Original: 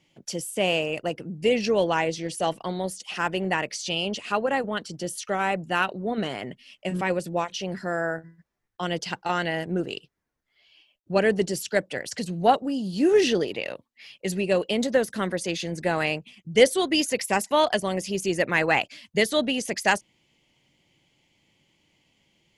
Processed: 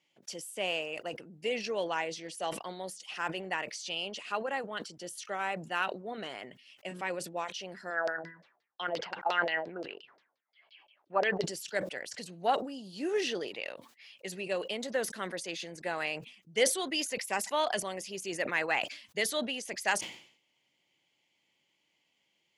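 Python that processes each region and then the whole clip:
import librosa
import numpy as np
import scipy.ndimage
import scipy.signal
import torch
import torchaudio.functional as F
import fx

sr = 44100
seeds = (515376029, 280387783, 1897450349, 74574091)

y = fx.chain(x, sr, fx.highpass(hz=320.0, slope=6),
    fx.filter_lfo_lowpass(shape='saw_down', hz=5.7, low_hz=520.0, high_hz=5000.0, q=4.5), at=(7.9, 11.44))
y = fx.highpass(y, sr, hz=700.0, slope=6)
y = fx.high_shelf(y, sr, hz=6100.0, db=-4.0)
y = fx.sustainer(y, sr, db_per_s=100.0)
y = y * librosa.db_to_amplitude(-6.5)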